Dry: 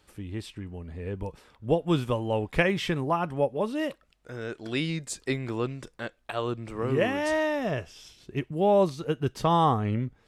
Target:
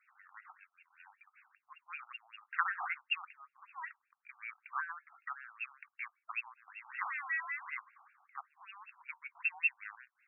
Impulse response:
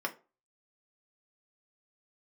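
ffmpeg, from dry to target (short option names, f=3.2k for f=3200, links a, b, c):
-filter_complex "[0:a]lowpass=f=3.2k:t=q:w=0.5098,lowpass=f=3.2k:t=q:w=0.6013,lowpass=f=3.2k:t=q:w=0.9,lowpass=f=3.2k:t=q:w=2.563,afreqshift=-3800,asplit=3[a][b][c];[a]afade=t=out:st=0.56:d=0.02[d];[b]aeval=exprs='val(0)*sin(2*PI*480*n/s)':c=same,afade=t=in:st=0.56:d=0.02,afade=t=out:st=1.26:d=0.02[e];[c]afade=t=in:st=1.26:d=0.02[f];[d][e][f]amix=inputs=3:normalize=0,afftfilt=real='re*between(b*sr/1024,960*pow(2000/960,0.5+0.5*sin(2*PI*5.2*pts/sr))/1.41,960*pow(2000/960,0.5+0.5*sin(2*PI*5.2*pts/sr))*1.41)':imag='im*between(b*sr/1024,960*pow(2000/960,0.5+0.5*sin(2*PI*5.2*pts/sr))/1.41,960*pow(2000/960,0.5+0.5*sin(2*PI*5.2*pts/sr))*1.41)':win_size=1024:overlap=0.75"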